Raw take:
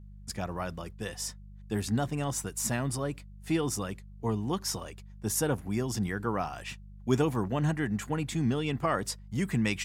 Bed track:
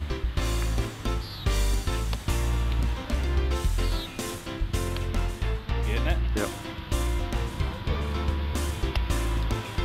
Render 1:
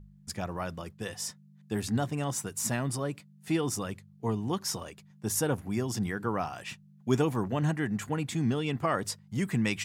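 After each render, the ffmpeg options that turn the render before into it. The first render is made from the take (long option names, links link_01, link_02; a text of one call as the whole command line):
ffmpeg -i in.wav -af "bandreject=frequency=50:width_type=h:width=4,bandreject=frequency=100:width_type=h:width=4" out.wav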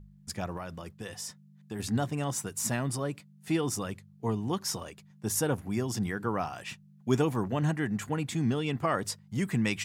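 ffmpeg -i in.wav -filter_complex "[0:a]asettb=1/sr,asplit=3[link_01][link_02][link_03];[link_01]atrim=end=0.574[link_04];[link_02]atrim=start=0.57:end=1.8,asetpts=PTS-STARTPTS,afade=type=in:duration=0.004:curve=qsin,afade=type=out:start_time=1.226:duration=0.004:curve=qsin,acompressor=threshold=-37dB:ratio=2:attack=3.2:release=140:knee=1:detection=peak[link_05];[link_03]atrim=start=1.796[link_06];[link_04][link_05]acrossfade=duration=0.004:curve1=hsin:curve2=qsin[link_07];[link_07][link_06]acrossfade=duration=0.004:curve1=qsin:curve2=hsin" out.wav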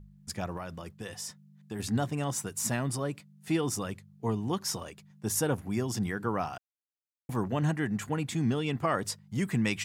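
ffmpeg -i in.wav -filter_complex "[0:a]asplit=3[link_01][link_02][link_03];[link_01]atrim=end=6.58,asetpts=PTS-STARTPTS,afade=type=out:start_time=6.576:duration=0.004:curve=hsin[link_04];[link_02]atrim=start=6.58:end=7.29,asetpts=PTS-STARTPTS,volume=0[link_05];[link_03]atrim=start=7.29,asetpts=PTS-STARTPTS,afade=type=in:duration=0.004:curve=hsin[link_06];[link_04][link_05][link_06]concat=n=3:v=0:a=1" out.wav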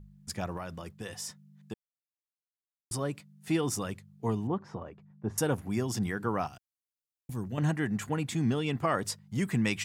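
ffmpeg -i in.wav -filter_complex "[0:a]asettb=1/sr,asplit=3[link_01][link_02][link_03];[link_01]atrim=end=4.474[link_04];[link_02]atrim=start=4.47:end=5.38,asetpts=PTS-STARTPTS,afade=type=in:duration=0.004:curve=qsin,afade=type=out:start_time=0.906:duration=0.004:curve=qsin,lowpass=1200[link_05];[link_03]atrim=start=5.376[link_06];[link_04][link_05]acrossfade=duration=0.004:curve1=hsin:curve2=qsin[link_07];[link_07][link_06]acrossfade=duration=0.004:curve1=qsin:curve2=hsin,asettb=1/sr,asplit=3[link_08][link_09][link_10];[link_08]atrim=end=6.474[link_11];[link_09]atrim=start=6.47:end=7.58,asetpts=PTS-STARTPTS,afade=type=in:duration=0.004:curve=qsin,afade=type=out:start_time=1.106:duration=0.004:curve=qsin,equalizer=frequency=930:width=0.36:gain=-13.5[link_12];[link_10]atrim=start=7.576[link_13];[link_11][link_12]acrossfade=duration=0.004:curve1=hsin:curve2=qsin[link_14];[link_14][link_13]acrossfade=duration=0.004:curve1=qsin:curve2=hsin,asplit=3[link_15][link_16][link_17];[link_15]atrim=end=1.74,asetpts=PTS-STARTPTS,afade=type=out:start_time=1.736:duration=0.004:curve=hsin[link_18];[link_16]atrim=start=1.74:end=2.91,asetpts=PTS-STARTPTS,volume=0[link_19];[link_17]atrim=start=2.91,asetpts=PTS-STARTPTS,afade=type=in:duration=0.004:curve=hsin[link_20];[link_18][link_19][link_20]concat=n=3:v=0:a=1" out.wav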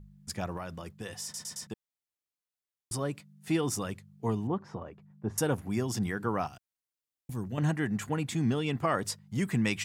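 ffmpeg -i in.wav -filter_complex "[0:a]asplit=5[link_01][link_02][link_03][link_04][link_05];[link_01]atrim=end=1.342[link_06];[link_02]atrim=start=1.228:end=1.342[link_07];[link_03]atrim=start=1.228:end=1.342[link_08];[link_04]atrim=start=1.228:end=1.342[link_09];[link_05]atrim=start=1.668[link_10];[link_06][link_07]acrossfade=duration=0.004:curve1=hsin:curve2=hsin[link_11];[link_11][link_08]acrossfade=duration=0.004:curve1=hsin:curve2=hsin[link_12];[link_12][link_09]acrossfade=duration=0.004:curve1=hsin:curve2=hsin[link_13];[link_13][link_10]acrossfade=duration=0.004:curve1=hsin:curve2=hsin" out.wav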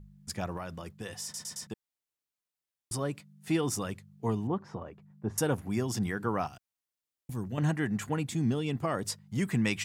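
ffmpeg -i in.wav -filter_complex "[0:a]asettb=1/sr,asplit=3[link_01][link_02][link_03];[link_01]atrim=end=8.224[link_04];[link_02]atrim=start=8.22:end=9.08,asetpts=PTS-STARTPTS,afade=type=in:duration=0.004:curve=qsin,afade=type=out:start_time=0.856:duration=0.004:curve=qsin,equalizer=frequency=1600:width_type=o:width=2.4:gain=-5.5[link_05];[link_03]atrim=start=9.076[link_06];[link_04][link_05]acrossfade=duration=0.004:curve1=hsin:curve2=qsin[link_07];[link_07][link_06]acrossfade=duration=0.004:curve1=qsin:curve2=hsin" out.wav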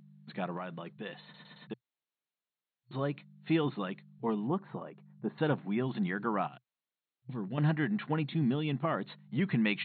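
ffmpeg -i in.wav -af "afftfilt=real='re*between(b*sr/4096,120,4300)':imag='im*between(b*sr/4096,120,4300)':win_size=4096:overlap=0.75,adynamicequalizer=threshold=0.00316:dfrequency=460:dqfactor=4.5:tfrequency=460:tqfactor=4.5:attack=5:release=100:ratio=0.375:range=3:mode=cutabove:tftype=bell" out.wav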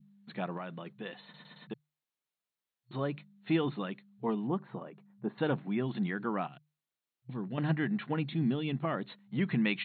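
ffmpeg -i in.wav -af "bandreject=frequency=50:width_type=h:width=6,bandreject=frequency=100:width_type=h:width=6,bandreject=frequency=150:width_type=h:width=6,adynamicequalizer=threshold=0.00447:dfrequency=950:dqfactor=1:tfrequency=950:tqfactor=1:attack=5:release=100:ratio=0.375:range=2:mode=cutabove:tftype=bell" out.wav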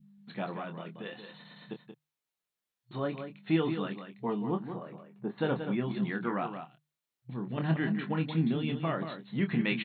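ffmpeg -i in.wav -filter_complex "[0:a]asplit=2[link_01][link_02];[link_02]adelay=25,volume=-7dB[link_03];[link_01][link_03]amix=inputs=2:normalize=0,asplit=2[link_04][link_05];[link_05]aecho=0:1:179:0.376[link_06];[link_04][link_06]amix=inputs=2:normalize=0" out.wav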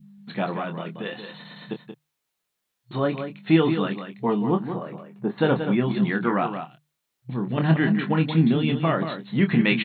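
ffmpeg -i in.wav -af "volume=9.5dB" out.wav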